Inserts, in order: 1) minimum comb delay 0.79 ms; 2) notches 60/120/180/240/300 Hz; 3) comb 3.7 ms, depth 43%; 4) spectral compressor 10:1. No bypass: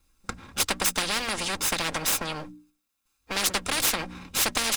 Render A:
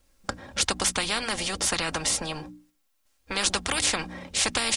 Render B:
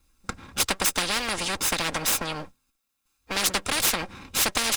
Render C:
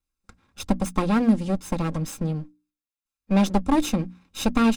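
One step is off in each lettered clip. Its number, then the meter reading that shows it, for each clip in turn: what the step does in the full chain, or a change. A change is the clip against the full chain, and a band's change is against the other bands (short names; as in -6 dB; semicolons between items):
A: 1, 1 kHz band -1.5 dB; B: 2, loudness change +1.0 LU; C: 4, 250 Hz band +19.0 dB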